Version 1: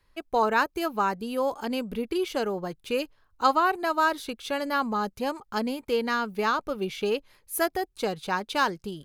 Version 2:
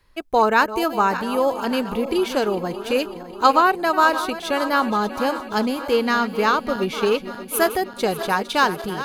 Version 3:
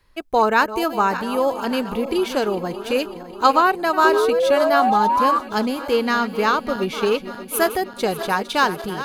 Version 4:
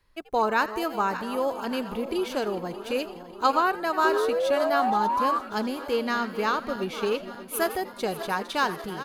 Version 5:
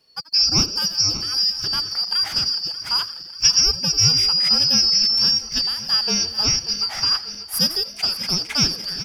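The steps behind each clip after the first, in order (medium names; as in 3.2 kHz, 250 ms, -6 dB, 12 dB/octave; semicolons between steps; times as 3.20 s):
backward echo that repeats 294 ms, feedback 74%, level -12.5 dB; trim +6.5 dB
painted sound rise, 4.04–5.39 s, 370–1200 Hz -18 dBFS
frequency-shifting echo 84 ms, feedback 47%, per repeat +130 Hz, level -18 dB; trim -7 dB
four frequency bands reordered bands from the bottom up 2341; trim +6 dB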